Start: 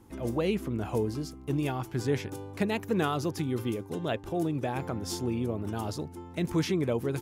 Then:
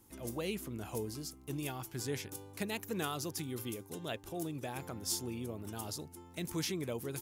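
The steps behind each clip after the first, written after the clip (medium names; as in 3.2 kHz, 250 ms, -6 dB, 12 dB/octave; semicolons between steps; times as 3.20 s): pre-emphasis filter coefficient 0.8; trim +3.5 dB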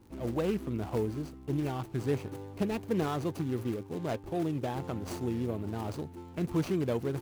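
median filter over 25 samples; crackle 21 per s -57 dBFS; trim +8.5 dB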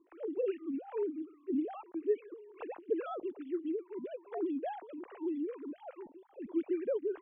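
formants replaced by sine waves; lamp-driven phase shifter 2.4 Hz; trim -2 dB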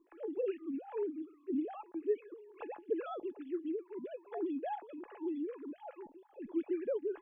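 feedback comb 840 Hz, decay 0.15 s, harmonics all, mix 70%; trim +8 dB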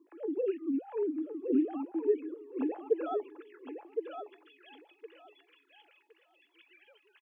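high-pass sweep 270 Hz -> 2.9 kHz, 2.61–3.91 s; on a send: feedback delay 1064 ms, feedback 19%, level -6 dB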